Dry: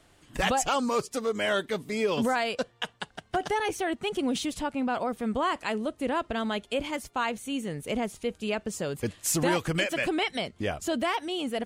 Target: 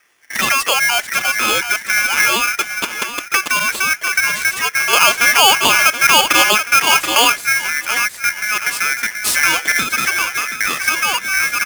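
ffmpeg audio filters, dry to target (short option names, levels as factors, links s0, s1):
-filter_complex "[0:a]asuperstop=centerf=2600:order=12:qfactor=1.1,acompressor=threshold=0.00282:ratio=2,agate=range=0.0794:threshold=0.002:ratio=16:detection=peak,highshelf=f=8000:g=-7,aecho=1:1:728|1456|2184|2912|3640:0.335|0.147|0.0648|0.0285|0.0126,acrossover=split=760[s0][s1];[s0]aeval=exprs='val(0)*(1-0.5/2+0.5/2*cos(2*PI*3.6*n/s))':c=same[s2];[s1]aeval=exprs='val(0)*(1-0.5/2-0.5/2*cos(2*PI*3.6*n/s))':c=same[s3];[s2][s3]amix=inputs=2:normalize=0,asettb=1/sr,asplit=3[s4][s5][s6];[s4]atrim=end=4.934[s7];[s5]atrim=start=4.93:end=7.41,asetpts=PTS-STARTPTS,afade=t=in:d=0.004:c=qsin,afade=t=out:st=2.476:d=0.004:c=qsin,equalizer=f=1300:t=o:w=2.9:g=12[s8];[s6]atrim=start=7.406[s9];[s7][s8]acrossfade=d=0.004:c1=hsin:c2=qsin[s10];[s10][s9]acrossfade=d=0.004:c1=qsin:c2=hsin,alimiter=level_in=26.6:limit=0.891:release=50:level=0:latency=1,aeval=exprs='val(0)*sgn(sin(2*PI*1900*n/s))':c=same,volume=0.891"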